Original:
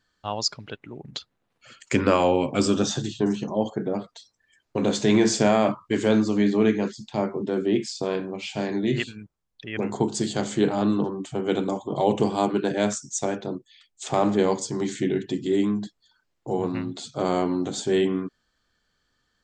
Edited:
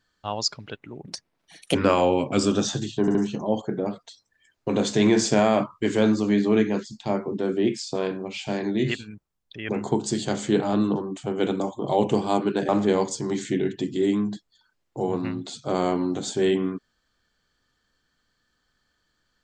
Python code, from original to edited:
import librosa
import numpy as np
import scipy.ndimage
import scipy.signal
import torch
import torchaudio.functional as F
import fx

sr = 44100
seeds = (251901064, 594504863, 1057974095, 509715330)

y = fx.edit(x, sr, fx.speed_span(start_s=1.07, length_s=0.9, speed=1.33),
    fx.stutter(start_s=3.23, slice_s=0.07, count=3),
    fx.cut(start_s=12.77, length_s=1.42), tone=tone)